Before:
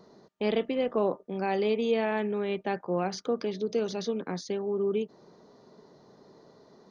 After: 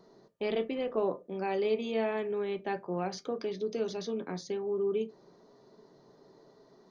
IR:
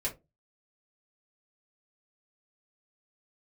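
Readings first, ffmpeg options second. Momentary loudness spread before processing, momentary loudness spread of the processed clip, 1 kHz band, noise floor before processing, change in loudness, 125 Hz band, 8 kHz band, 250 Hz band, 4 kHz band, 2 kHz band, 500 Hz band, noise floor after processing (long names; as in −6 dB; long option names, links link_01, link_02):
6 LU, 6 LU, −4.0 dB, −59 dBFS, −3.5 dB, −5.0 dB, can't be measured, −5.0 dB, −4.0 dB, −4.5 dB, −3.0 dB, −61 dBFS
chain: -filter_complex "[0:a]asplit=2[link_01][link_02];[1:a]atrim=start_sample=2205[link_03];[link_02][link_03]afir=irnorm=-1:irlink=0,volume=-9dB[link_04];[link_01][link_04]amix=inputs=2:normalize=0,volume=-6.5dB"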